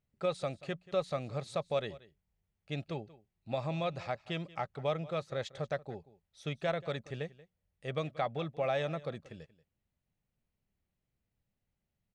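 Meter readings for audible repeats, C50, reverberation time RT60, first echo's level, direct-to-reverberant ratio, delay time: 1, no reverb, no reverb, -19.5 dB, no reverb, 183 ms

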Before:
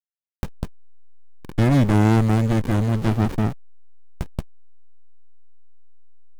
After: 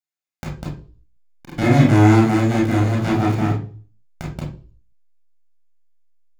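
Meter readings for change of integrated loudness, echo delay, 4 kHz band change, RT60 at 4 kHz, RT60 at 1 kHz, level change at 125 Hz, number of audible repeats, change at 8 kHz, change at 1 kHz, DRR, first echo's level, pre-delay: +3.5 dB, no echo, +4.0 dB, 0.40 s, 0.35 s, +2.0 dB, no echo, +4.0 dB, +5.5 dB, -3.0 dB, no echo, 26 ms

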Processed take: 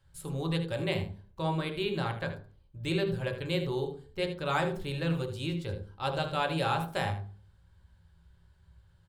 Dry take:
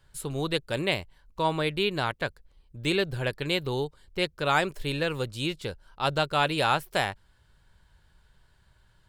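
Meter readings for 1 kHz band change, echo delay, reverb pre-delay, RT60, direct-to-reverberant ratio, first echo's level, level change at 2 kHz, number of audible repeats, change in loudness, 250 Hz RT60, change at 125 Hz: -5.5 dB, 78 ms, 3 ms, 0.40 s, 2.0 dB, -11.5 dB, -7.0 dB, 1, -4.0 dB, 0.55 s, +0.5 dB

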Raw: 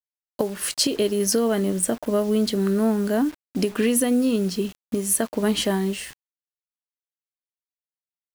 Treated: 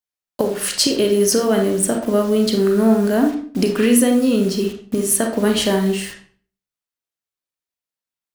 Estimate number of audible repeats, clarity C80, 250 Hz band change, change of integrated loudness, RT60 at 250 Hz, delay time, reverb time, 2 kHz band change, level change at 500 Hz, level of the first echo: no echo, 11.5 dB, +5.5 dB, +5.5 dB, 0.55 s, no echo, 0.45 s, +5.5 dB, +6.0 dB, no echo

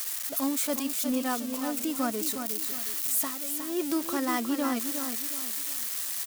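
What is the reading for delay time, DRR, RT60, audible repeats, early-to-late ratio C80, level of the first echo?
361 ms, no reverb, no reverb, 3, no reverb, -7.5 dB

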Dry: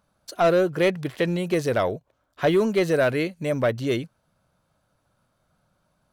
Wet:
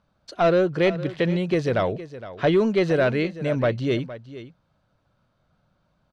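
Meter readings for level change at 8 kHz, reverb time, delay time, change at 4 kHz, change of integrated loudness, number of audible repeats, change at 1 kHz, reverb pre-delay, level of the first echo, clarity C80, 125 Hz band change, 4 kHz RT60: no reading, no reverb, 463 ms, 0.0 dB, +0.5 dB, 1, 0.0 dB, no reverb, -15.0 dB, no reverb, +3.0 dB, no reverb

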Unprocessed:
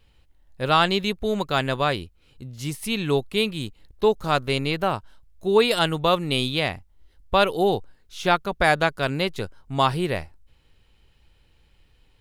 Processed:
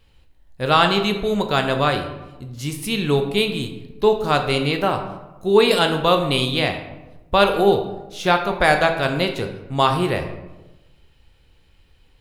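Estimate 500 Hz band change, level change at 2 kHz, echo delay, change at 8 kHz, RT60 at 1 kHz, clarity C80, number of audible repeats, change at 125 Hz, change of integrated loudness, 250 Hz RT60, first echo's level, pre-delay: +4.5 dB, +3.5 dB, no echo, +3.0 dB, 1.0 s, 10.5 dB, no echo, +3.5 dB, +4.0 dB, 1.2 s, no echo, 11 ms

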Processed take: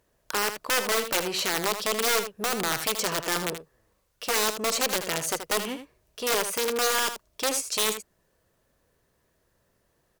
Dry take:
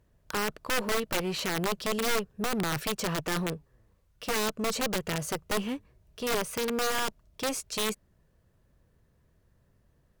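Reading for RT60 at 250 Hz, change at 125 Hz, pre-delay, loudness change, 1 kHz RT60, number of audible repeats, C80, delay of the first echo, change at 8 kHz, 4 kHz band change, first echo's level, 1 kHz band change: no reverb, -6.0 dB, no reverb, +4.5 dB, no reverb, 1, no reverb, 79 ms, +7.5 dB, +6.0 dB, -9.5 dB, +4.0 dB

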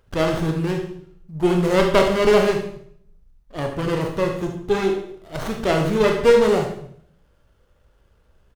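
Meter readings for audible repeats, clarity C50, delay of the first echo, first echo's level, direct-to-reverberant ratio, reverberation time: 1, 5.5 dB, 74 ms, -11.0 dB, 2.0 dB, 0.60 s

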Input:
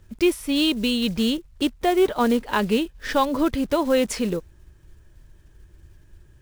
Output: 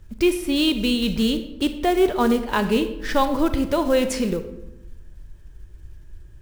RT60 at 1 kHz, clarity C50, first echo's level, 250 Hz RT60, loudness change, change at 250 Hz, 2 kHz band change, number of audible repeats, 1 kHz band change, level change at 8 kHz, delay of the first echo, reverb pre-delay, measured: 0.90 s, 10.5 dB, no echo, 1.1 s, +1.0 dB, +1.0 dB, +0.5 dB, no echo, +0.5 dB, +0.5 dB, no echo, 32 ms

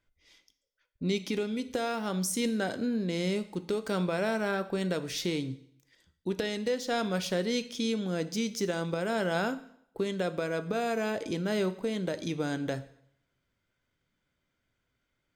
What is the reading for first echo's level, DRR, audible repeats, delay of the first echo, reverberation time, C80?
no echo, 11.0 dB, no echo, no echo, 0.70 s, 18.5 dB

